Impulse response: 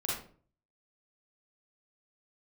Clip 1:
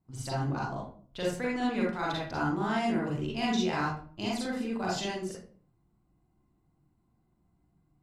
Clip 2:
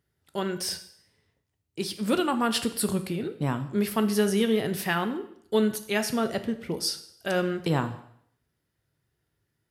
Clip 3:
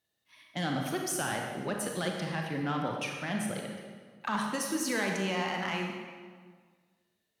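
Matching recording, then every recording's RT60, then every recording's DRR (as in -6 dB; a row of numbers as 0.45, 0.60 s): 1; 0.45, 0.65, 1.7 s; -6.0, 8.0, 0.5 dB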